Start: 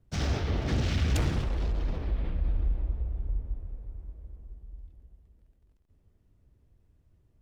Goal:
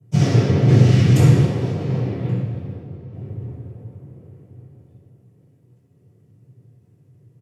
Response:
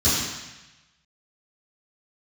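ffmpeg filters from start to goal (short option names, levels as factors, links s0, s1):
-filter_complex "[0:a]asettb=1/sr,asplit=3[s0][s1][s2];[s0]atrim=end=2.424[s3];[s1]atrim=start=2.42:end=3.13,asetpts=PTS-STARTPTS,afade=t=in:d=0.004:c=qsin,afade=t=out:st=0.706:d=0.004:c=qsin,agate=range=0.0224:threshold=0.0794:ratio=3:detection=peak[s4];[s2]atrim=start=3.126[s5];[s3][s4]acrossfade=d=0.004:c1=hsin:c2=qsin[s6];[s6][s5]acrossfade=d=0.004:c1=qsin:c2=hsin,asplit=2[s7][s8];[s8]adelay=1130,lowpass=f=2300:p=1,volume=0.0668,asplit=2[s9][s10];[s10]adelay=1130,lowpass=f=2300:p=1,volume=0.4,asplit=2[s11][s12];[s12]adelay=1130,lowpass=f=2300:p=1,volume=0.4[s13];[s7][s9][s11][s13]amix=inputs=4:normalize=0[s14];[1:a]atrim=start_sample=2205,asetrate=74970,aresample=44100[s15];[s14][s15]afir=irnorm=-1:irlink=0,volume=0.562"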